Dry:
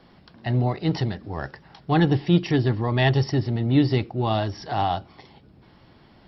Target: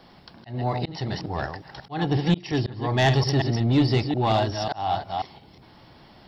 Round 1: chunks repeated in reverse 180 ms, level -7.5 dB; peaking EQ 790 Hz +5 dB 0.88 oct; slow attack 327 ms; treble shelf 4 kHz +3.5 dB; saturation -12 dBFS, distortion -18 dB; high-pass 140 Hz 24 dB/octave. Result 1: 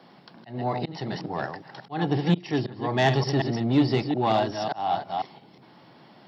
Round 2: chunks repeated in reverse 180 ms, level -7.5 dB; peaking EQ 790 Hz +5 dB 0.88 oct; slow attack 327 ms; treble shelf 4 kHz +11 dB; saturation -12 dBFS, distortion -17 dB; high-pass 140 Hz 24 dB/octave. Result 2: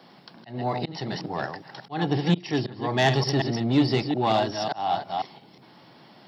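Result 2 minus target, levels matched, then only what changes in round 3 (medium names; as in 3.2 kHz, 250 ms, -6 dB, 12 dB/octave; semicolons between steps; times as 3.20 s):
125 Hz band -3.0 dB
remove: high-pass 140 Hz 24 dB/octave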